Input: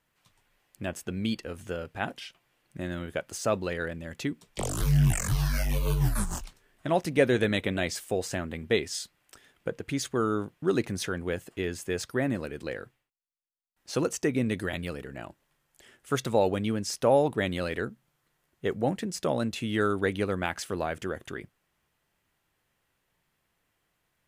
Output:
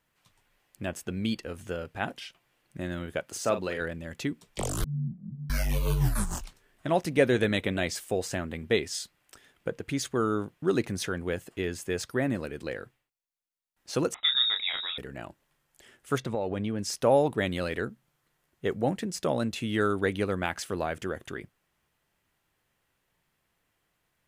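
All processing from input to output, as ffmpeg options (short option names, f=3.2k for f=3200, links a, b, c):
-filter_complex "[0:a]asettb=1/sr,asplit=3[a][b][c];[a]atrim=end=3.264[d];[b]atrim=start=3.26:end=3.81,asetpts=PTS-STARTPTS,afade=t=in:d=0.004:c=qsin,afade=t=out:st=0.546:d=0.004:c=qsin,highpass=f=160:p=1,asplit=2[e][f];[f]adelay=43,volume=-9.5dB[g];[e][g]amix=inputs=2:normalize=0,atrim=end_sample=24255[h];[c]atrim=start=3.806[i];[d][h]acrossfade=d=0.004:c1=hsin:c2=qsin[j];[j][i]acrossfade=d=0.004:c1=qsin:c2=hsin,asettb=1/sr,asplit=3[k][l][m];[k]atrim=end=4.844[n];[l]atrim=start=4.84:end=5.5,asetpts=PTS-STARTPTS,afade=t=in:d=0.004:c=qsin,afade=t=out:st=0.656:d=0.004:c=qsin,aeval=exprs='val(0)+0.5*0.0126*sgn(val(0))':c=same,asuperpass=centerf=190:order=4:qfactor=3.1[o];[m]atrim=start=5.496[p];[n][o]acrossfade=d=0.004:c1=hsin:c2=qsin[q];[q][p]acrossfade=d=0.004:c1=qsin:c2=hsin,asettb=1/sr,asplit=3[r][s][t];[r]atrim=end=14.144[u];[s]atrim=start=14.14:end=14.98,asetpts=PTS-STARTPTS,afade=t=in:d=0.004:c=qsin,afade=t=out:st=0.836:d=0.004:c=qsin,lowpass=f=3.3k:t=q:w=0.5098,lowpass=f=3.3k:t=q:w=0.6013,lowpass=f=3.3k:t=q:w=0.9,lowpass=f=3.3k:t=q:w=2.563,afreqshift=-3900,asplit=2[v][w];[w]adelay=31,volume=-6.5dB[x];[v][x]amix=inputs=2:normalize=0,atrim=end_sample=37044[y];[t]atrim=start=14.976[z];[u][y]acrossfade=d=0.004:c1=hsin:c2=qsin[aa];[aa][z]acrossfade=d=0.004:c1=qsin:c2=hsin,asettb=1/sr,asplit=3[ab][ac][ad];[ab]atrim=end=16.184[ae];[ac]atrim=start=16.18:end=16.79,asetpts=PTS-STARTPTS,afade=t=in:d=0.004:c=qsin,afade=t=out:st=0.606:d=0.004:c=qsin,lowpass=f=2.3k:p=1,bandreject=f=1.3k:w=15,acompressor=threshold=-26dB:ratio=4:attack=3.2:release=140:knee=1:detection=peak[af];[ad]atrim=start=16.786[ag];[ae][af]acrossfade=d=0.004:c1=hsin:c2=qsin[ah];[ah][ag]acrossfade=d=0.004:c1=qsin:c2=hsin"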